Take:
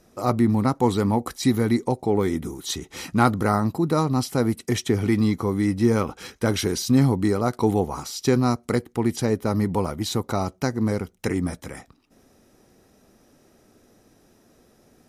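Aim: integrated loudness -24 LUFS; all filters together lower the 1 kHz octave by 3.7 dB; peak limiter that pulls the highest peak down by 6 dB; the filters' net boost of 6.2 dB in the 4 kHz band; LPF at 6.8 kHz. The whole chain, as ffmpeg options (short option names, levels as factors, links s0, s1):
-af "lowpass=6800,equalizer=f=1000:t=o:g=-5.5,equalizer=f=4000:t=o:g=8,volume=1.06,alimiter=limit=0.251:level=0:latency=1"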